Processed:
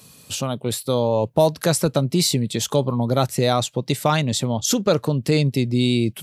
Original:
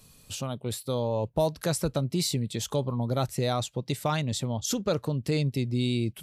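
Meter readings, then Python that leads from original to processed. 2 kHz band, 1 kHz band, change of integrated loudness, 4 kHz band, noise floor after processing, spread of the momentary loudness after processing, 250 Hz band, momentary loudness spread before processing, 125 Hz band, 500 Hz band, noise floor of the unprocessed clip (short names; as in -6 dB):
+9.0 dB, +9.0 dB, +8.5 dB, +9.0 dB, -49 dBFS, 5 LU, +8.5 dB, 5 LU, +6.5 dB, +9.0 dB, -57 dBFS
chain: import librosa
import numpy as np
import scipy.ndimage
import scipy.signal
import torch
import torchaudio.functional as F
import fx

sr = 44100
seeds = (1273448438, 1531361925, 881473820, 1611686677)

y = scipy.signal.sosfilt(scipy.signal.butter(2, 120.0, 'highpass', fs=sr, output='sos'), x)
y = y * librosa.db_to_amplitude(9.0)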